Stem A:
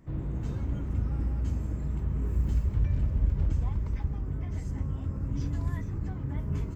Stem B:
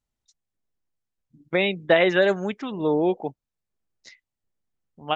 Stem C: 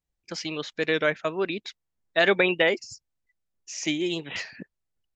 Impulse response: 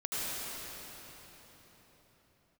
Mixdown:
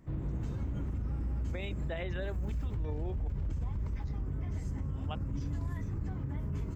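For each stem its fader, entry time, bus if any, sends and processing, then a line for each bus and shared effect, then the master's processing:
-1.5 dB, 0.00 s, no send, none
-15.0 dB, 0.00 s, no send, none
mute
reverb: none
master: peak limiter -28 dBFS, peak gain reduction 11 dB

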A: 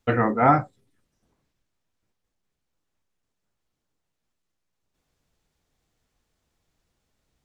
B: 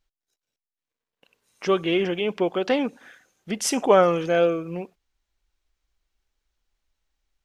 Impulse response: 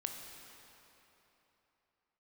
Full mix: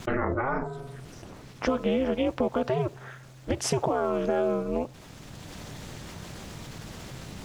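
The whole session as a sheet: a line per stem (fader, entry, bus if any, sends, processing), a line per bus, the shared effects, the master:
0.0 dB, 0.00 s, send -21.5 dB, de-hum 282 Hz, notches 5; peak limiter -16 dBFS, peak gain reduction 10 dB; level flattener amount 70%; auto duck -8 dB, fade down 1.85 s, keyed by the second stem
+2.5 dB, 0.00 s, no send, high-order bell 600 Hz +9 dB 2.8 oct; peak limiter -7.5 dBFS, peak gain reduction 11.5 dB; compression, threshold -23 dBFS, peak gain reduction 11 dB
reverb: on, RT60 3.4 s, pre-delay 16 ms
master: treble shelf 10 kHz -8.5 dB; ring modulator 130 Hz

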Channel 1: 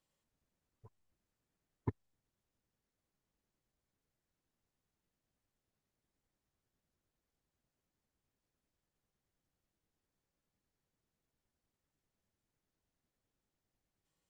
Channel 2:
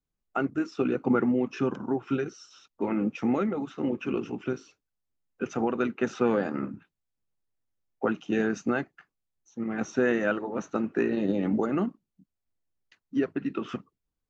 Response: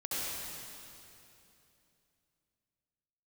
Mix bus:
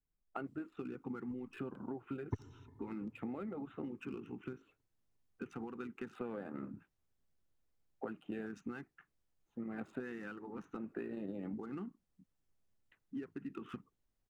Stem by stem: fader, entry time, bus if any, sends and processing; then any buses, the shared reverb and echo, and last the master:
-3.5 dB, 0.45 s, send -17 dB, echo send -22 dB, none
-6.0 dB, 0.00 s, no send, no echo send, local Wiener filter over 9 samples; compression, threshold -34 dBFS, peak gain reduction 14 dB; LFO notch square 0.65 Hz 600–5800 Hz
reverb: on, RT60 2.9 s, pre-delay 62 ms
echo: feedback delay 353 ms, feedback 60%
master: bass shelf 65 Hz +7.5 dB

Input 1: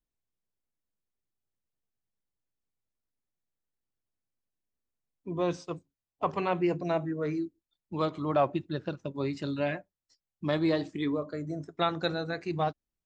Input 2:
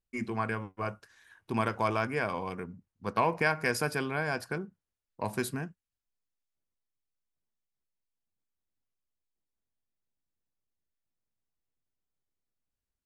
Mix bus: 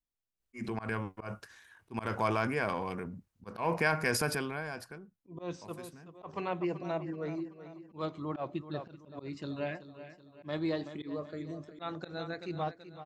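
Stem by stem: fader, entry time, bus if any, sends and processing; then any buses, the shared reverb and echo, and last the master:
-6.0 dB, 0.00 s, no send, echo send -13 dB, none
-1.5 dB, 0.40 s, no send, no echo send, transient shaper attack 0 dB, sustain +7 dB; auto duck -17 dB, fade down 0.95 s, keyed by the first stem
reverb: none
echo: feedback delay 380 ms, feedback 48%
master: slow attack 127 ms

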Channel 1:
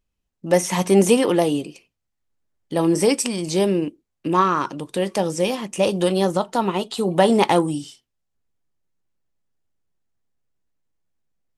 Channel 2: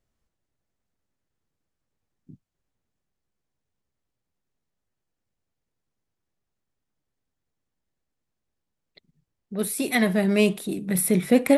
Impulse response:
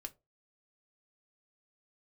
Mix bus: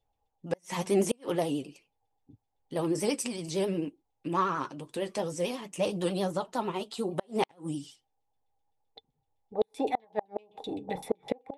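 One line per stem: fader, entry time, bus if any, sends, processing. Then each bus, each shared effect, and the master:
-6.5 dB, 0.00 s, no send, vibrato 11 Hz 86 cents; flange 0.5 Hz, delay 6.3 ms, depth 2 ms, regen -42%
-3.5 dB, 0.00 s, send -23 dB, FFT filter 110 Hz 0 dB, 170 Hz -19 dB, 290 Hz -17 dB, 830 Hz +3 dB, 1.4 kHz -16 dB, 6.2 kHz +6 dB; LFO low-pass saw down 7.8 Hz 660–3500 Hz; small resonant body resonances 290/450/800/3500 Hz, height 16 dB, ringing for 45 ms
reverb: on, RT60 0.25 s, pre-delay 3 ms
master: inverted gate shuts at -15 dBFS, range -36 dB

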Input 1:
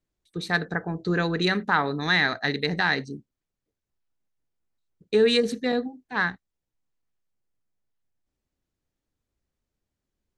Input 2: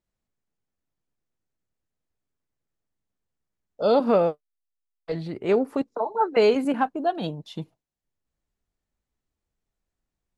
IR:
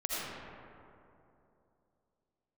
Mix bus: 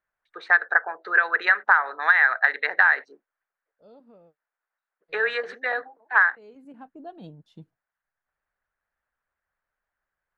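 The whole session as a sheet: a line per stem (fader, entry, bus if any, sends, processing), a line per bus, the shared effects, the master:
0.0 dB, 0.00 s, no send, high-pass 590 Hz 24 dB/octave; harmonic-percussive split percussive +6 dB; resonant low-pass 1.6 kHz, resonance Q 3.3
-19.5 dB, 0.00 s, no send, bass shelf 440 Hz +9.5 dB; auto duck -19 dB, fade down 1.80 s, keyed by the first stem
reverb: none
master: compression 6:1, threshold -14 dBFS, peak gain reduction 10.5 dB

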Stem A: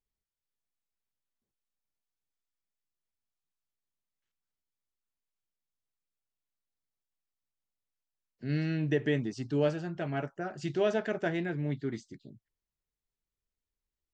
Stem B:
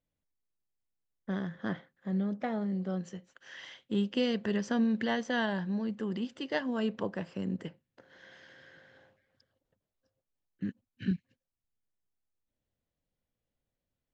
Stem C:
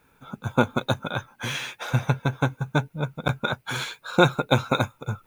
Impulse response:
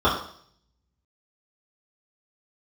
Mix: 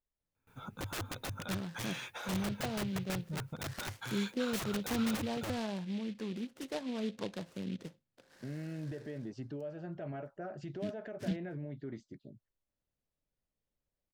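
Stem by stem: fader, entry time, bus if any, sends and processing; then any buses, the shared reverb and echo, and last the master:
-2.5 dB, 0.00 s, bus A, no send, low-pass 1.6 kHz 6 dB/octave; peaking EQ 580 Hz +8.5 dB 0.36 oct; compression 6:1, threshold -30 dBFS, peak gain reduction 12.5 dB
-5.0 dB, 0.20 s, no bus, no send, low-pass that closes with the level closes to 910 Hz, closed at -28.5 dBFS; delay time shaken by noise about 2.8 kHz, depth 0.082 ms
-4.5 dB, 0.35 s, bus A, no send, gate with hold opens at -50 dBFS; peaking EQ 100 Hz +12 dB 0.57 oct
bus A: 0.0 dB, integer overflow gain 23.5 dB; peak limiter -34 dBFS, peak gain reduction 10.5 dB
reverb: none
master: none

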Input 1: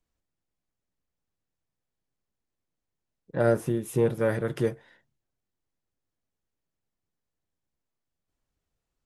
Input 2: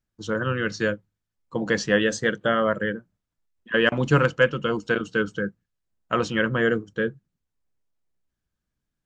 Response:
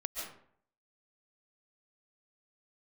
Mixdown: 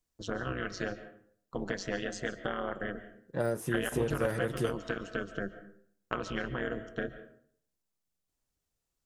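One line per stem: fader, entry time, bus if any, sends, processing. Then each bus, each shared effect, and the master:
-3.5 dB, 0.00 s, no send, de-esser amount 90%; tone controls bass -1 dB, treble +8 dB; compression, threshold -23 dBFS, peak gain reduction 6.5 dB
-3.5 dB, 0.00 s, send -9.5 dB, gate with hold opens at -41 dBFS; compression, threshold -26 dBFS, peak gain reduction 13 dB; AM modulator 190 Hz, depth 90%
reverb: on, RT60 0.60 s, pre-delay 100 ms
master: none

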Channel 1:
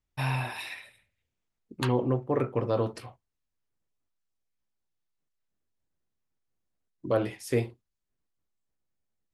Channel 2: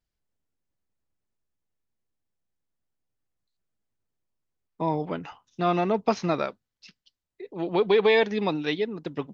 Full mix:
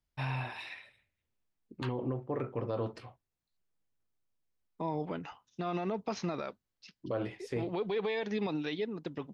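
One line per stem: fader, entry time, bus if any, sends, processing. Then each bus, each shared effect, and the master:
-5.0 dB, 0.00 s, no send, low-pass 4.9 kHz 12 dB/octave
-4.5 dB, 0.00 s, no send, none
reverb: none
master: peak limiter -25 dBFS, peak gain reduction 10.5 dB

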